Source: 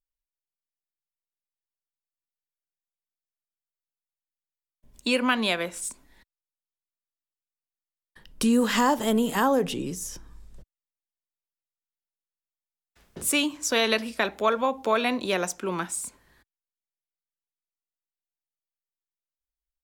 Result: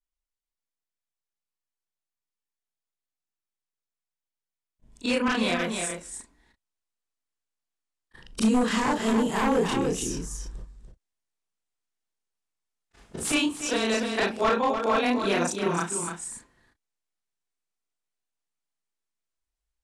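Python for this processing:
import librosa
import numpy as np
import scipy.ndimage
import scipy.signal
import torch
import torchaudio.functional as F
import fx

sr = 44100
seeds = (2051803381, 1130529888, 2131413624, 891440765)

y = fx.frame_reverse(x, sr, frame_ms=81.0)
y = fx.high_shelf(y, sr, hz=7300.0, db=10.5)
y = 10.0 ** (-20.0 / 20.0) * (np.abs((y / 10.0 ** (-20.0 / 20.0) + 3.0) % 4.0 - 2.0) - 1.0)
y = fx.notch(y, sr, hz=570.0, q=12.0)
y = y + 10.0 ** (-7.5 / 20.0) * np.pad(y, (int(294 * sr / 1000.0), 0))[:len(y)]
y = fx.rider(y, sr, range_db=10, speed_s=0.5)
y = scipy.signal.sosfilt(scipy.signal.butter(4, 9200.0, 'lowpass', fs=sr, output='sos'), y)
y = fx.high_shelf(y, sr, hz=2800.0, db=-8.0)
y = y * librosa.db_to_amplitude(5.0)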